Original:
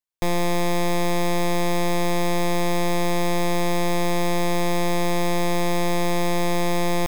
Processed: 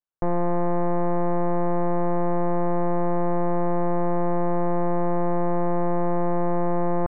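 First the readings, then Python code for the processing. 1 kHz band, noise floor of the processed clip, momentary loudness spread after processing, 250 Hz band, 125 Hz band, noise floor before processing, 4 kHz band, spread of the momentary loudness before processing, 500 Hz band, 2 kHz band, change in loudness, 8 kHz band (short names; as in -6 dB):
-0.5 dB, -21 dBFS, 0 LU, -0.5 dB, -1.0 dB, -20 dBFS, under -40 dB, 0 LU, 0.0 dB, -12.5 dB, -1.5 dB, under -40 dB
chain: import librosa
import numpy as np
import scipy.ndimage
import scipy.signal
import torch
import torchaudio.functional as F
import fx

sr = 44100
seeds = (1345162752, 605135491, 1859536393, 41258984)

y = scipy.signal.sosfilt(scipy.signal.cheby1(4, 1.0, 1500.0, 'lowpass', fs=sr, output='sos'), x)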